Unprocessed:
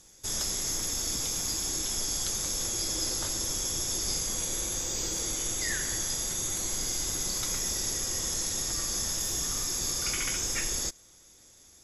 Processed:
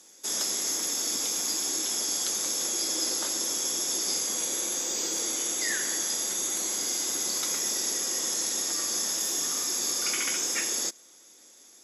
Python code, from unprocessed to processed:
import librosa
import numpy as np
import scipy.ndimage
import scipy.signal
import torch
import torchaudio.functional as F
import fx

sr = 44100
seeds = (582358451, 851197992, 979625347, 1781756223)

y = scipy.signal.sosfilt(scipy.signal.butter(4, 230.0, 'highpass', fs=sr, output='sos'), x)
y = y * 10.0 ** (2.5 / 20.0)